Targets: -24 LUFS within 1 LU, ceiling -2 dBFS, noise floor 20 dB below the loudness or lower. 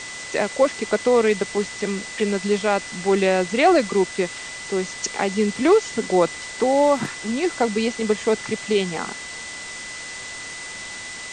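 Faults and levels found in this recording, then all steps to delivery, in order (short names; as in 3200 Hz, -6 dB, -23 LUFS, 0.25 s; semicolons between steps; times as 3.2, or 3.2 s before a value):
steady tone 2000 Hz; tone level -35 dBFS; noise floor -35 dBFS; noise floor target -42 dBFS; loudness -22.0 LUFS; peak -6.0 dBFS; loudness target -24.0 LUFS
-> notch 2000 Hz, Q 30; noise print and reduce 7 dB; gain -2 dB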